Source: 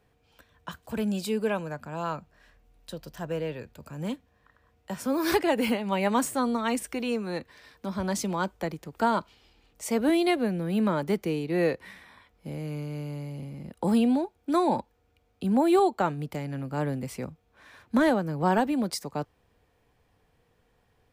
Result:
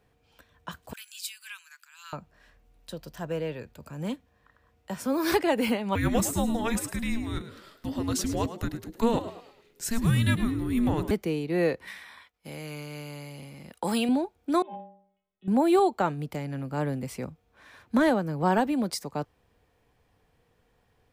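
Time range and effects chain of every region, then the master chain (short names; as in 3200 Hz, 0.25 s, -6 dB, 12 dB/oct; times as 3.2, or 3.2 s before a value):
0.93–2.13 Bessel high-pass 2500 Hz, order 8 + high shelf 4700 Hz +4.5 dB
5.95–11.11 high shelf 7300 Hz +5.5 dB + frequency shift -460 Hz + frequency-shifting echo 0.106 s, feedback 37%, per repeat +88 Hz, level -12.5 dB
11.87–14.09 expander -56 dBFS + tilt shelf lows -7.5 dB, about 660 Hz
14.62–15.48 metallic resonator 190 Hz, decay 0.64 s, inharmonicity 0.008 + overloaded stage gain 30.5 dB + careless resampling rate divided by 6×, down none, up filtered
whole clip: dry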